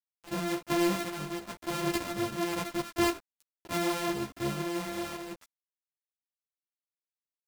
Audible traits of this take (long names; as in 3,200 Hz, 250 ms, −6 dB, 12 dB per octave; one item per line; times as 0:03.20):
a buzz of ramps at a fixed pitch in blocks of 128 samples
tremolo saw up 0.97 Hz, depth 50%
a quantiser's noise floor 8 bits, dither none
a shimmering, thickened sound